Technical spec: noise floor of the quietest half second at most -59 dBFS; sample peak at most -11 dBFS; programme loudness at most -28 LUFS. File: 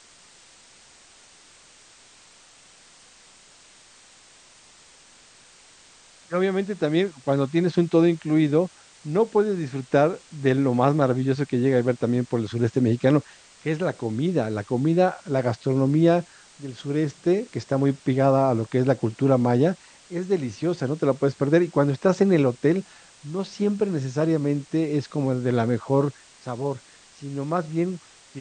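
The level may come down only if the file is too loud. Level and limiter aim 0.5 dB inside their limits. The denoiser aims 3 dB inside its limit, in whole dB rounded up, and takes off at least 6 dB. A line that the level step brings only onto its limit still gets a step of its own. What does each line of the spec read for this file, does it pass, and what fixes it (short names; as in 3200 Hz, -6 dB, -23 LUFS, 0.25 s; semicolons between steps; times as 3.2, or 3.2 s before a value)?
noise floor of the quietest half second -52 dBFS: fail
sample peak -5.5 dBFS: fail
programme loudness -23.0 LUFS: fail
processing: denoiser 6 dB, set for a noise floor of -52 dBFS; gain -5.5 dB; limiter -11.5 dBFS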